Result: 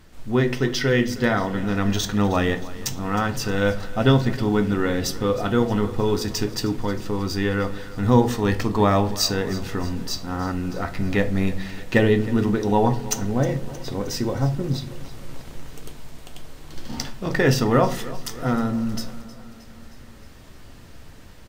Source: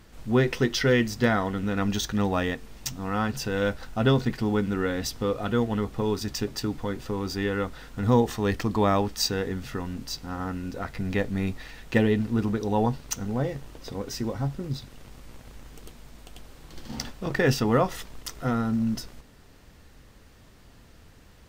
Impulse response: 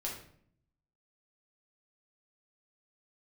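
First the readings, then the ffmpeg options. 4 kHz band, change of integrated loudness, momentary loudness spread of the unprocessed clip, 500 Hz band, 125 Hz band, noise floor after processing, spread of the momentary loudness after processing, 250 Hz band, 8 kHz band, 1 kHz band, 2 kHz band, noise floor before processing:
+4.0 dB, +4.0 dB, 12 LU, +4.0 dB, +5.0 dB, -43 dBFS, 13 LU, +4.0 dB, +5.0 dB, +4.5 dB, +4.0 dB, -53 dBFS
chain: -filter_complex "[0:a]aecho=1:1:313|626|939|1252|1565:0.126|0.0743|0.0438|0.0259|0.0153,asplit=2[a][b];[1:a]atrim=start_sample=2205,asetrate=70560,aresample=44100[c];[b][c]afir=irnorm=-1:irlink=0,volume=-1dB[d];[a][d]amix=inputs=2:normalize=0,dynaudnorm=f=250:g=13:m=6dB,volume=-2dB"

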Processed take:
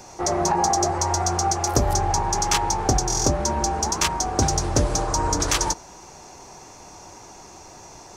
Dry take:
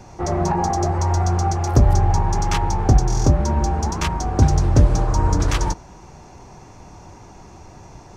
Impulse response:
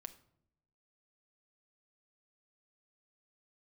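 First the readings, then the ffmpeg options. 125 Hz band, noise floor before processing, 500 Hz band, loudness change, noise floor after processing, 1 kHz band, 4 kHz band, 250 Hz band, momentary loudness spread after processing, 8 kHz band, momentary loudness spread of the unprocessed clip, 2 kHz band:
-9.5 dB, -43 dBFS, 0.0 dB, -2.5 dB, -45 dBFS, +1.0 dB, +6.5 dB, -4.0 dB, 2 LU, +8.5 dB, 6 LU, +1.5 dB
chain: -af "bass=f=250:g=-11,treble=f=4k:g=9,volume=1dB"

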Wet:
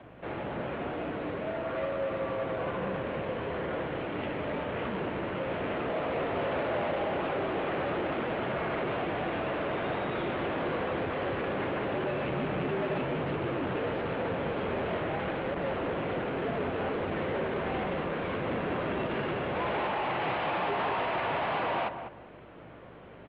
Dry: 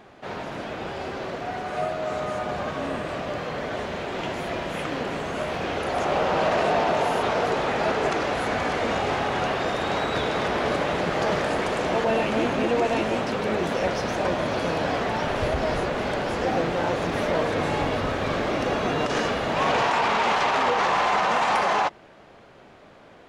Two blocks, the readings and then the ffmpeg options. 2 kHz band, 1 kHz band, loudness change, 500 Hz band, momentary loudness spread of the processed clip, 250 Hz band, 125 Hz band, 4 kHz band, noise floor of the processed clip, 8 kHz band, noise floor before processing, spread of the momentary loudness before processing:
-8.0 dB, -9.0 dB, -7.0 dB, -6.0 dB, 5 LU, -5.0 dB, -4.5 dB, -11.0 dB, -48 dBFS, under -35 dB, -50 dBFS, 9 LU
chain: -filter_complex "[0:a]asplit=2[a][b];[b]acrusher=samples=18:mix=1:aa=0.000001:lfo=1:lforange=18:lforate=1,volume=-9dB[c];[a][c]amix=inputs=2:normalize=0,aeval=exprs='val(0)+0.00708*(sin(2*PI*50*n/s)+sin(2*PI*2*50*n/s)/2+sin(2*PI*3*50*n/s)/3+sin(2*PI*4*50*n/s)/4+sin(2*PI*5*50*n/s)/5)':c=same,aresample=11025,asoftclip=type=tanh:threshold=-27dB,aresample=44100,asplit=2[d][e];[e]adelay=198,lowpass=f=1.5k:p=1,volume=-8dB,asplit=2[f][g];[g]adelay=198,lowpass=f=1.5k:p=1,volume=0.25,asplit=2[h][i];[i]adelay=198,lowpass=f=1.5k:p=1,volume=0.25[j];[d][f][h][j]amix=inputs=4:normalize=0,highpass=f=170:t=q:w=0.5412,highpass=f=170:t=q:w=1.307,lowpass=f=3.3k:t=q:w=0.5176,lowpass=f=3.3k:t=q:w=0.7071,lowpass=f=3.3k:t=q:w=1.932,afreqshift=-82,volume=-1.5dB" -ar 48000 -c:a libopus -b:a 48k

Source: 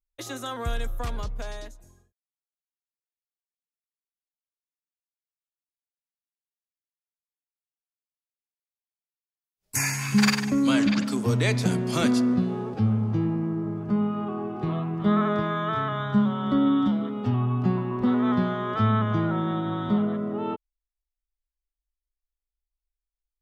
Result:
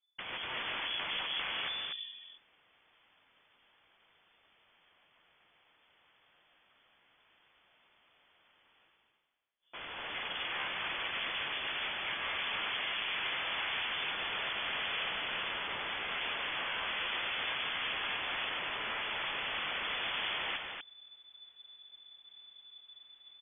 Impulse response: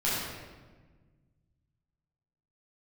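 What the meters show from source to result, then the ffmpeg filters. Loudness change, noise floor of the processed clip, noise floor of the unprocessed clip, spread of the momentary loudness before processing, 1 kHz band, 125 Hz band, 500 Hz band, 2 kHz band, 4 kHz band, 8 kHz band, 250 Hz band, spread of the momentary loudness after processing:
-9.5 dB, -70 dBFS, under -85 dBFS, 11 LU, -8.5 dB, -33.0 dB, -16.5 dB, 0.0 dB, +3.5 dB, under -40 dB, -32.5 dB, 19 LU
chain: -filter_complex "[0:a]equalizer=f=310:t=o:w=0.57:g=4,asplit=2[a][b];[b]acompressor=threshold=-29dB:ratio=6,volume=1dB[c];[a][c]amix=inputs=2:normalize=0,alimiter=limit=-17.5dB:level=0:latency=1:release=160,areverse,acompressor=mode=upward:threshold=-33dB:ratio=2.5,areverse,aeval=exprs='(mod(26.6*val(0)+1,2)-1)/26.6':c=same,aecho=1:1:145.8|244.9:0.316|0.501,lowpass=f=3k:t=q:w=0.5098,lowpass=f=3k:t=q:w=0.6013,lowpass=f=3k:t=q:w=0.9,lowpass=f=3k:t=q:w=2.563,afreqshift=-3500,volume=-3dB"

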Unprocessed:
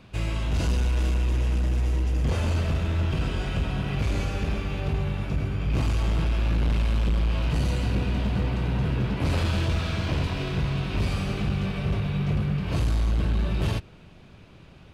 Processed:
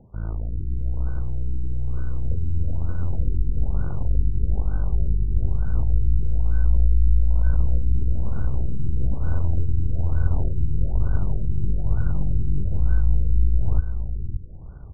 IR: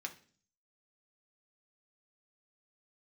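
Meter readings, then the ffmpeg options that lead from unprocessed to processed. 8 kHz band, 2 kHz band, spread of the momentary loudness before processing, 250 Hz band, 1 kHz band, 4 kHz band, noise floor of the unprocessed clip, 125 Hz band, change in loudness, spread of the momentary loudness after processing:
n/a, -13.5 dB, 3 LU, -6.0 dB, -10.0 dB, under -40 dB, -49 dBFS, +1.0 dB, +1.0 dB, 7 LU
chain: -filter_complex "[0:a]aeval=exprs='0.168*(cos(1*acos(clip(val(0)/0.168,-1,1)))-cos(1*PI/2))+0.0422*(cos(4*acos(clip(val(0)/0.168,-1,1)))-cos(4*PI/2))':c=same,lowshelf=f=170:g=7,areverse,acompressor=threshold=-22dB:ratio=16,areverse,asubboost=boost=3.5:cutoff=94,acrusher=samples=28:mix=1:aa=0.000001,asplit=2[a][b];[b]adelay=571.4,volume=-7dB,highshelf=f=4k:g=-12.9[c];[a][c]amix=inputs=2:normalize=0,afftfilt=real='re*lt(b*sr/1024,400*pow(1600/400,0.5+0.5*sin(2*PI*1.1*pts/sr)))':imag='im*lt(b*sr/1024,400*pow(1600/400,0.5+0.5*sin(2*PI*1.1*pts/sr)))':win_size=1024:overlap=0.75,volume=-1dB"

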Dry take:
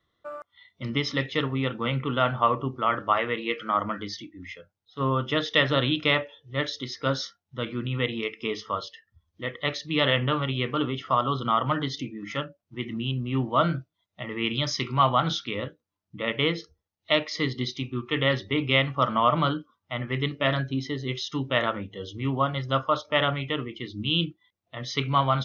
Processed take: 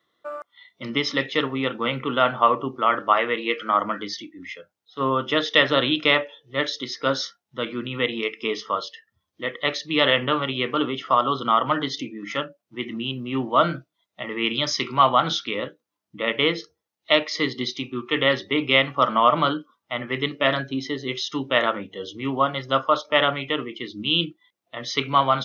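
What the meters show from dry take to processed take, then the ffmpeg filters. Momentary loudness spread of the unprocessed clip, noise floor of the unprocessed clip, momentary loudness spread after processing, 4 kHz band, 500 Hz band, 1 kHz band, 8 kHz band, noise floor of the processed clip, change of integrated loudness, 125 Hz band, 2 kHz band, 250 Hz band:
13 LU, -81 dBFS, 13 LU, +4.5 dB, +4.5 dB, +4.5 dB, n/a, -81 dBFS, +3.5 dB, -5.5 dB, +4.5 dB, +2.0 dB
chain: -af "highpass=240,volume=4.5dB"

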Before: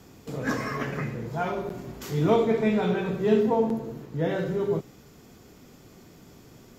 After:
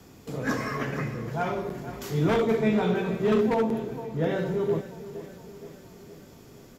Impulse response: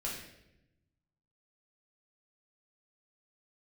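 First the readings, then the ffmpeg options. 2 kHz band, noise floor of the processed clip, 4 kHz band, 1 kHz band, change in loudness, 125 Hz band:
+1.0 dB, -50 dBFS, +0.5 dB, -0.5 dB, -0.5 dB, +0.5 dB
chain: -filter_complex "[0:a]equalizer=f=11k:w=7.5:g=4.5,aecho=1:1:468|936|1404|1872|2340|2808:0.188|0.105|0.0591|0.0331|0.0185|0.0104,acrossover=split=260|1700[a][b][c];[b]aeval=exprs='0.106*(abs(mod(val(0)/0.106+3,4)-2)-1)':c=same[d];[a][d][c]amix=inputs=3:normalize=0"

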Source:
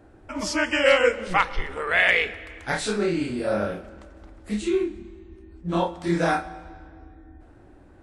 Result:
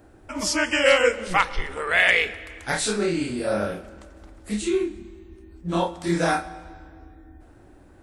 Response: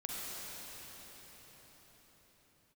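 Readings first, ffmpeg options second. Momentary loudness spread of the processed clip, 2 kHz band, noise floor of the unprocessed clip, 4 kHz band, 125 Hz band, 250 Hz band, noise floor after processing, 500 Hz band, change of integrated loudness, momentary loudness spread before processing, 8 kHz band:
18 LU, +1.0 dB, -51 dBFS, +2.5 dB, 0.0 dB, 0.0 dB, -51 dBFS, 0.0 dB, +1.0 dB, 18 LU, +6.5 dB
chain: -af "highshelf=f=6k:g=11"

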